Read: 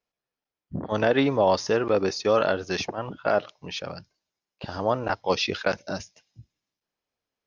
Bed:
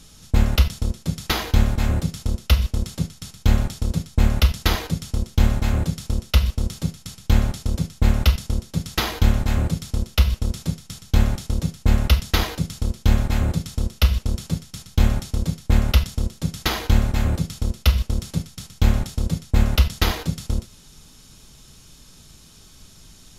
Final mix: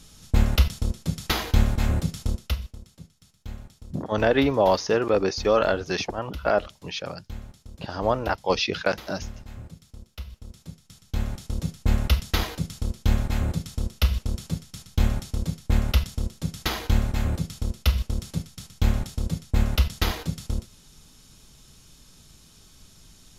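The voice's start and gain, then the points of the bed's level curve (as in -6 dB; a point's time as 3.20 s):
3.20 s, +1.0 dB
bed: 2.30 s -2.5 dB
2.82 s -20.5 dB
10.31 s -20.5 dB
11.68 s -4.5 dB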